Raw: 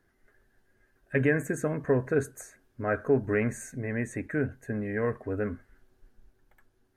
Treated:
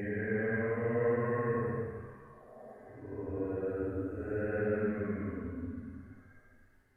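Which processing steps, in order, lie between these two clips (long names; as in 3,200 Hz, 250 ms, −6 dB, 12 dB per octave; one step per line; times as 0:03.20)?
extreme stretch with random phases 9.5×, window 0.10 s, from 0:04.93
level −4.5 dB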